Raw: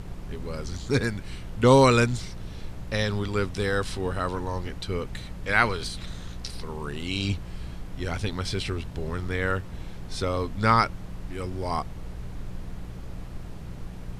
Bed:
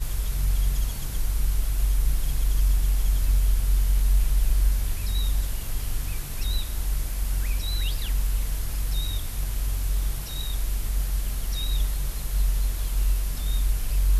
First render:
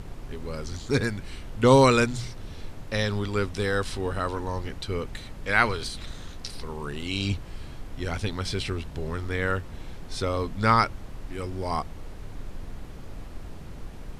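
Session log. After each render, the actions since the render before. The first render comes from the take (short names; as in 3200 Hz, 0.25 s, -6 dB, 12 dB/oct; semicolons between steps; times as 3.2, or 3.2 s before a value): de-hum 60 Hz, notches 3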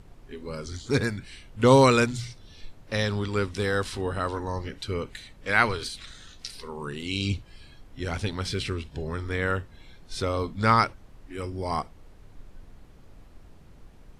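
noise print and reduce 11 dB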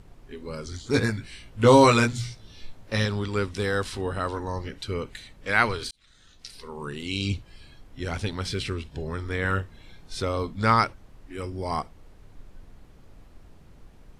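0.92–3.06 doubler 18 ms -3 dB; 5.91–6.84 fade in; 9.41–10.14 doubler 31 ms -5 dB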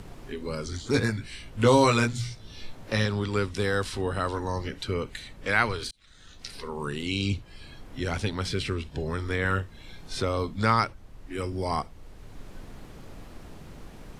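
three-band squash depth 40%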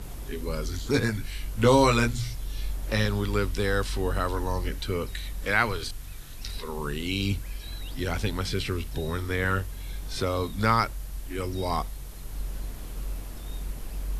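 add bed -11 dB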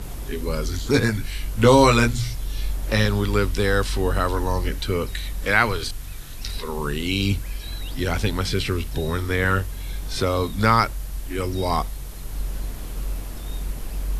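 gain +5.5 dB; limiter -2 dBFS, peak gain reduction 1 dB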